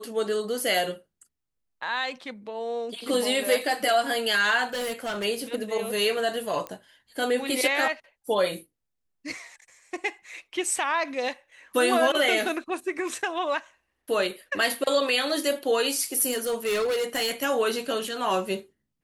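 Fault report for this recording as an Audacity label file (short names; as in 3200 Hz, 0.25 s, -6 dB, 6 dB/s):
4.730000	5.250000	clipped -27 dBFS
6.670000	6.670000	pop -19 dBFS
16.310000	17.310000	clipped -22.5 dBFS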